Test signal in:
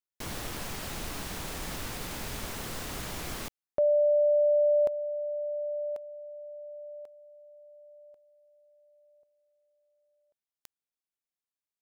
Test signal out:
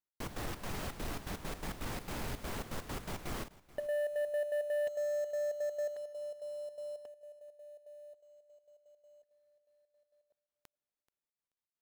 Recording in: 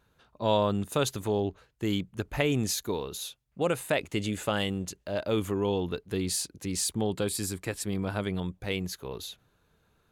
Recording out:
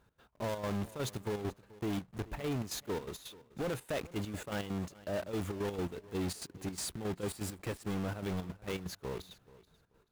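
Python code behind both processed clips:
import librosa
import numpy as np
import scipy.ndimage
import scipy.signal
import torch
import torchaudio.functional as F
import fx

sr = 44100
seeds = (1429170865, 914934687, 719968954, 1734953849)

p1 = fx.block_float(x, sr, bits=3)
p2 = fx.high_shelf(p1, sr, hz=2300.0, db=-9.0)
p3 = fx.over_compress(p2, sr, threshold_db=-28.0, ratio=-0.5)
p4 = p2 + F.gain(torch.from_numpy(p3), 2.0).numpy()
p5 = fx.step_gate(p4, sr, bpm=166, pattern='x.x.xx.xxx.xx.x.', floor_db=-12.0, edge_ms=4.5)
p6 = 10.0 ** (-23.0 / 20.0) * np.tanh(p5 / 10.0 ** (-23.0 / 20.0))
p7 = p6 + fx.echo_feedback(p6, sr, ms=432, feedback_pct=21, wet_db=-20.0, dry=0)
y = F.gain(torch.from_numpy(p7), -7.5).numpy()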